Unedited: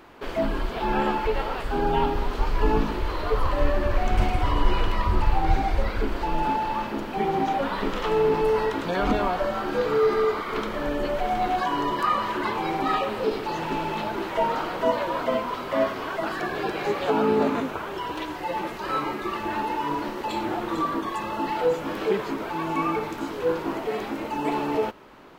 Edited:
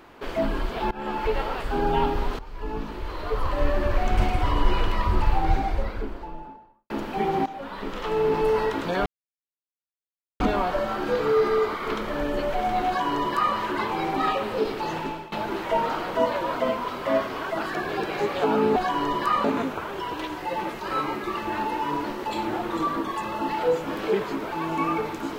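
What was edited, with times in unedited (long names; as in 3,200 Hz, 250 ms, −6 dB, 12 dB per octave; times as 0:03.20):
0:00.91–0:01.27: fade in, from −23.5 dB
0:02.39–0:03.82: fade in, from −18.5 dB
0:05.27–0:06.90: fade out and dull
0:07.46–0:08.45: fade in, from −14.5 dB
0:09.06: splice in silence 1.34 s
0:11.53–0:12.21: duplicate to 0:17.42
0:13.61–0:13.98: fade out, to −19.5 dB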